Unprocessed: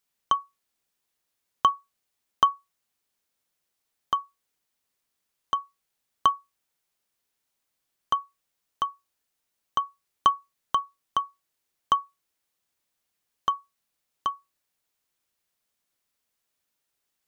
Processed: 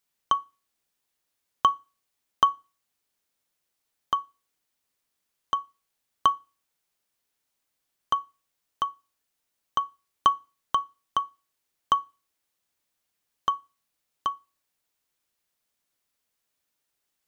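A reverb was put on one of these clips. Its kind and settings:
feedback delay network reverb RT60 0.34 s, low-frequency decay 1.1×, high-frequency decay 1×, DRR 19 dB

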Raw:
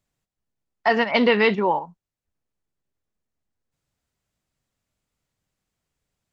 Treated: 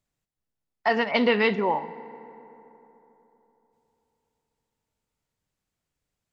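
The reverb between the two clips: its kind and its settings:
feedback delay network reverb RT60 3.5 s, high-frequency decay 0.45×, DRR 15.5 dB
level −3.5 dB

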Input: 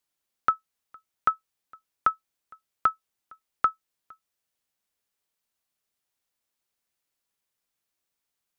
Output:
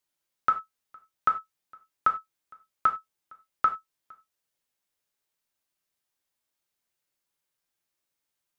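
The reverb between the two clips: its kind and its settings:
reverb whose tail is shaped and stops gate 120 ms falling, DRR 3.5 dB
level −2 dB

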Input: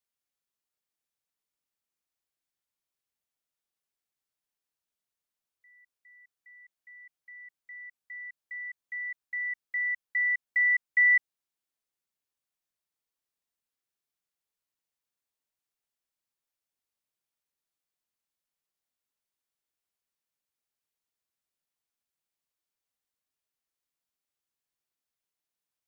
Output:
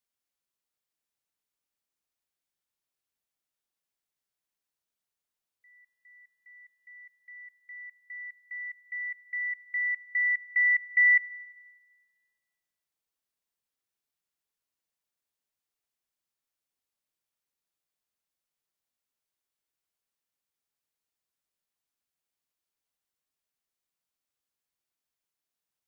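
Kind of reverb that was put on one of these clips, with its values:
four-comb reverb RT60 1.5 s, combs from 33 ms, DRR 19.5 dB

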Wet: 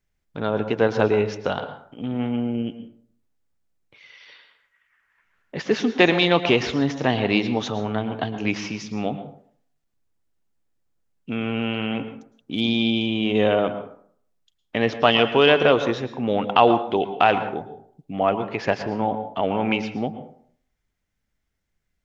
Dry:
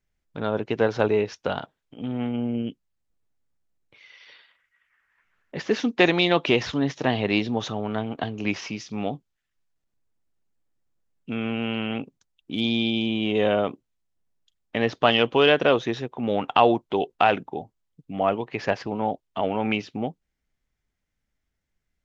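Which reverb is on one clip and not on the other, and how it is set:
dense smooth reverb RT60 0.57 s, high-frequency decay 0.55×, pre-delay 100 ms, DRR 10 dB
level +2 dB

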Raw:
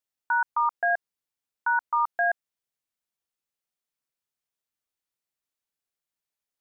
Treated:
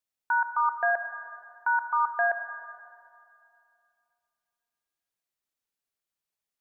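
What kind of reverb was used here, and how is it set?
comb and all-pass reverb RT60 2.5 s, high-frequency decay 0.75×, pre-delay 30 ms, DRR 8 dB
level −1 dB

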